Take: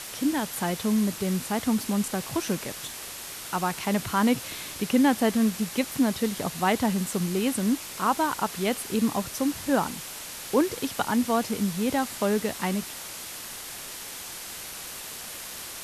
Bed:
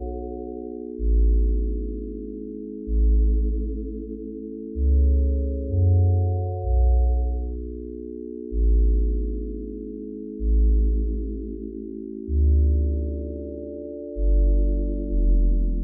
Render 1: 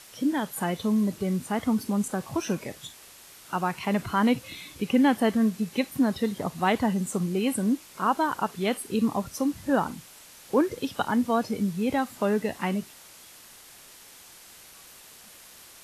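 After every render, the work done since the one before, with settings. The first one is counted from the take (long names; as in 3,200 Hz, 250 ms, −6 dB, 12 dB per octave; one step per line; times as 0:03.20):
noise reduction from a noise print 11 dB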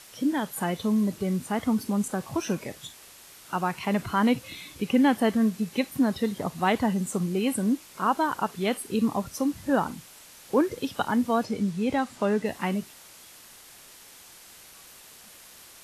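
0:11.45–0:12.46: low-pass filter 8,900 Hz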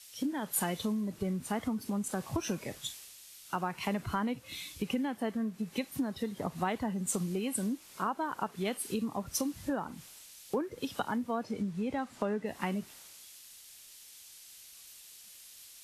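downward compressor 12 to 1, threshold −30 dBFS, peak gain reduction 14 dB
multiband upward and downward expander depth 70%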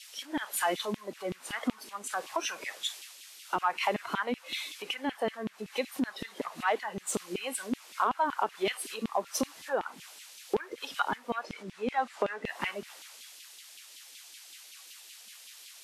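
mid-hump overdrive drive 10 dB, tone 4,600 Hz, clips at −16.5 dBFS
auto-filter high-pass saw down 5.3 Hz 220–3,100 Hz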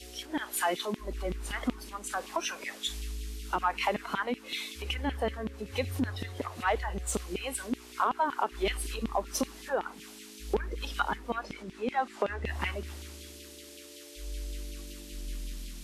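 mix in bed −19.5 dB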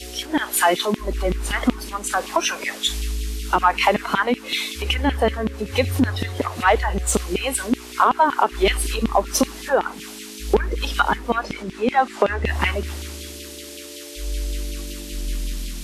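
level +12 dB
brickwall limiter −3 dBFS, peak gain reduction 2 dB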